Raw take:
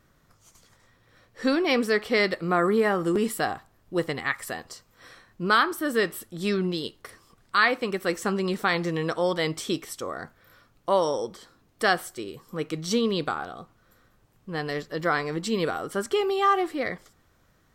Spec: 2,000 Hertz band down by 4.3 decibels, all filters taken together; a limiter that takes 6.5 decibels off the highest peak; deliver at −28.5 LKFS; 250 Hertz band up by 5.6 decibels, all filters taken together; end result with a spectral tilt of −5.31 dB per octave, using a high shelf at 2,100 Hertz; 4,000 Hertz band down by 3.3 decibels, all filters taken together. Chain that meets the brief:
parametric band 250 Hz +7.5 dB
parametric band 2,000 Hz −7.5 dB
high-shelf EQ 2,100 Hz +6.5 dB
parametric band 4,000 Hz −8 dB
level −2 dB
brickwall limiter −17.5 dBFS

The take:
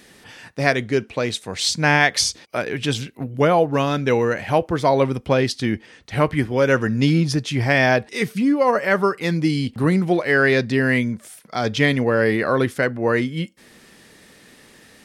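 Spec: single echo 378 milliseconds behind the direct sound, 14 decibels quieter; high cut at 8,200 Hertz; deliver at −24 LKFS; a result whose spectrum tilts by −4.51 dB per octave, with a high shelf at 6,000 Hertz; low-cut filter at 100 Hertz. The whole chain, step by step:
high-pass filter 100 Hz
low-pass filter 8,200 Hz
high-shelf EQ 6,000 Hz −5.5 dB
single-tap delay 378 ms −14 dB
level −4 dB

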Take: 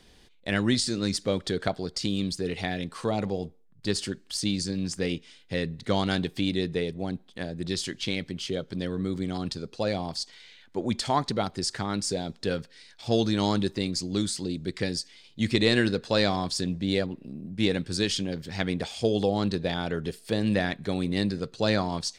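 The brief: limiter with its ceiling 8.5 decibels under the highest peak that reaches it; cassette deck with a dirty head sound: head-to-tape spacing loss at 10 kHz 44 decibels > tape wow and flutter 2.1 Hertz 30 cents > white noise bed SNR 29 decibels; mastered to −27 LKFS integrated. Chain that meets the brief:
brickwall limiter −17 dBFS
head-to-tape spacing loss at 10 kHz 44 dB
tape wow and flutter 2.1 Hz 30 cents
white noise bed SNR 29 dB
level +6 dB

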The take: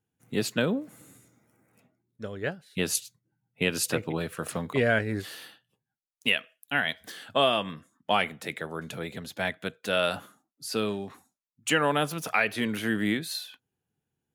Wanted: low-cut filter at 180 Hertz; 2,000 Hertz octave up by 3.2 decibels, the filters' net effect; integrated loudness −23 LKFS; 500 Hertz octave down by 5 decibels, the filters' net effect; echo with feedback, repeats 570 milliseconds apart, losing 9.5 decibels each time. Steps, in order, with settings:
high-pass filter 180 Hz
parametric band 500 Hz −6.5 dB
parametric band 2,000 Hz +4.5 dB
repeating echo 570 ms, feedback 33%, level −9.5 dB
level +5.5 dB

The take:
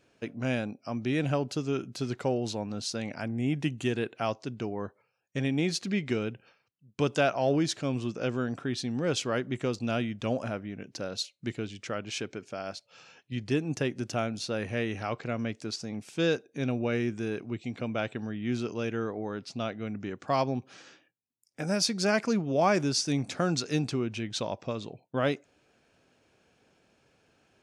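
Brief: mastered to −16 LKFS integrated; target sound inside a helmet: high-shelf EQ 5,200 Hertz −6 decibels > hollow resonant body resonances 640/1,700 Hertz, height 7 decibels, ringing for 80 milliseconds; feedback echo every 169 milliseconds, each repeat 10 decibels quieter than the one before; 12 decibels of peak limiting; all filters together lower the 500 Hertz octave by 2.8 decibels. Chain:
parametric band 500 Hz −3.5 dB
brickwall limiter −24 dBFS
high-shelf EQ 5,200 Hz −6 dB
repeating echo 169 ms, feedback 32%, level −10 dB
hollow resonant body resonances 640/1,700 Hz, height 7 dB, ringing for 80 ms
level +19 dB

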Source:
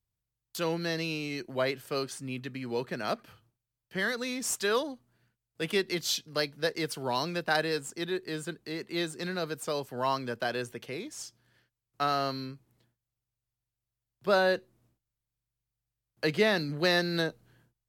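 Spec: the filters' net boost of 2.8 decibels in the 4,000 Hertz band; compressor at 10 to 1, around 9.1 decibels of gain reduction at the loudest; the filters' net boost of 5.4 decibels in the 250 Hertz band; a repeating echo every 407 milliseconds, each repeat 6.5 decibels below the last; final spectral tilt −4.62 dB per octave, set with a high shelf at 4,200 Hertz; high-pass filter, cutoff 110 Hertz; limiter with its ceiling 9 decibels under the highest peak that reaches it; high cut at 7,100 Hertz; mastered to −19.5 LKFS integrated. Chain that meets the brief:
high-pass filter 110 Hz
low-pass filter 7,100 Hz
parametric band 250 Hz +8 dB
parametric band 4,000 Hz +6 dB
high-shelf EQ 4,200 Hz −5 dB
downward compressor 10 to 1, threshold −27 dBFS
brickwall limiter −27 dBFS
repeating echo 407 ms, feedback 47%, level −6.5 dB
level +16.5 dB

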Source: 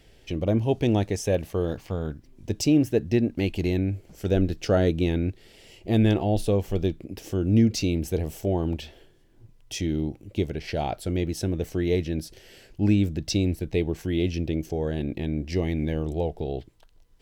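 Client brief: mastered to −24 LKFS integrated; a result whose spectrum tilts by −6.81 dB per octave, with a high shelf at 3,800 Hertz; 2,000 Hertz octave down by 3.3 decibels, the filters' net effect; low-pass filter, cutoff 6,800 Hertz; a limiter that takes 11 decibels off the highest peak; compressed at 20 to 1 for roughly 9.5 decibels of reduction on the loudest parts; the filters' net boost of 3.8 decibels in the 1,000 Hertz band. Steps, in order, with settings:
low-pass filter 6,800 Hz
parametric band 1,000 Hz +7 dB
parametric band 2,000 Hz −4.5 dB
high-shelf EQ 3,800 Hz −5 dB
downward compressor 20 to 1, threshold −24 dBFS
level +13 dB
brickwall limiter −14 dBFS

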